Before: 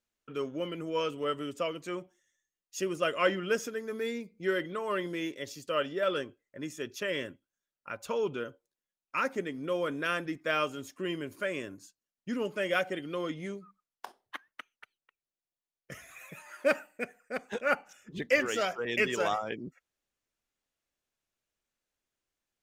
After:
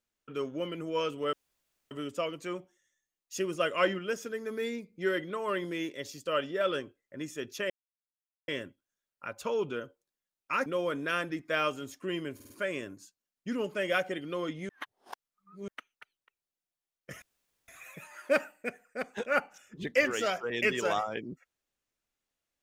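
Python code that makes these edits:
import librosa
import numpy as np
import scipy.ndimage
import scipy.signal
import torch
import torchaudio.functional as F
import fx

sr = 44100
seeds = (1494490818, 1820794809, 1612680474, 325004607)

y = fx.edit(x, sr, fx.insert_room_tone(at_s=1.33, length_s=0.58),
    fx.clip_gain(start_s=3.41, length_s=0.27, db=-4.0),
    fx.insert_silence(at_s=7.12, length_s=0.78),
    fx.cut(start_s=9.3, length_s=0.32),
    fx.stutter(start_s=11.31, slice_s=0.05, count=4),
    fx.reverse_span(start_s=13.5, length_s=0.99),
    fx.insert_room_tone(at_s=16.03, length_s=0.46), tone=tone)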